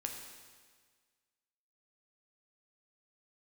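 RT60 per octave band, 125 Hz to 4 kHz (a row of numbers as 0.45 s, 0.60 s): 1.6 s, 1.6 s, 1.6 s, 1.6 s, 1.6 s, 1.6 s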